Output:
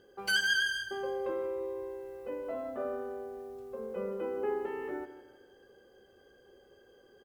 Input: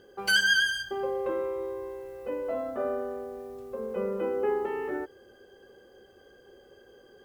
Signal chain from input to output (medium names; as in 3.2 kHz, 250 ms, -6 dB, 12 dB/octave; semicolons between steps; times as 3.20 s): feedback delay 160 ms, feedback 38%, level -13 dB; trim -5.5 dB